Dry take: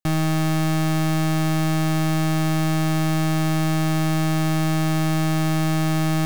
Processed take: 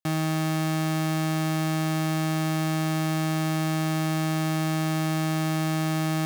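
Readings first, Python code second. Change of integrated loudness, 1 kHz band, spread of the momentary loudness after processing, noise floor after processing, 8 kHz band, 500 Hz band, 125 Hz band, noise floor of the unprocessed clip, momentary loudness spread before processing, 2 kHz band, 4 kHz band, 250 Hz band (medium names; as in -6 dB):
-4.5 dB, -3.5 dB, 0 LU, -26 dBFS, -3.5 dB, -3.5 dB, -5.5 dB, -20 dBFS, 0 LU, -3.5 dB, -3.5 dB, -4.5 dB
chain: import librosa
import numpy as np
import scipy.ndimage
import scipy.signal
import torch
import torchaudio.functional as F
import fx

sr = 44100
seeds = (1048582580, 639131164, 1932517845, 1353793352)

y = scipy.signal.sosfilt(scipy.signal.butter(2, 140.0, 'highpass', fs=sr, output='sos'), x)
y = y * 10.0 ** (-3.5 / 20.0)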